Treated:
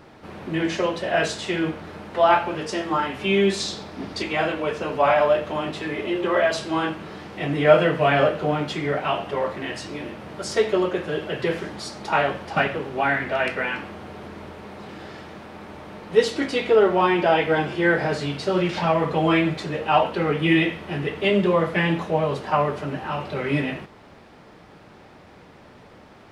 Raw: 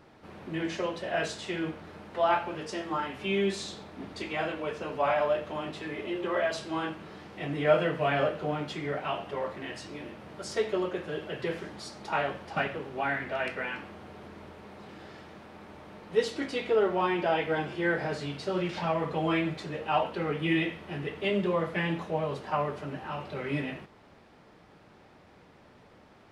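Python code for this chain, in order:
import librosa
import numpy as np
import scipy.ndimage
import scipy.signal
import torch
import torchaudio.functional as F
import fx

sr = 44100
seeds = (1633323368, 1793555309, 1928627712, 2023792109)

y = fx.peak_eq(x, sr, hz=5100.0, db=6.5, octaves=0.54, at=(3.6, 4.23))
y = y * 10.0 ** (8.5 / 20.0)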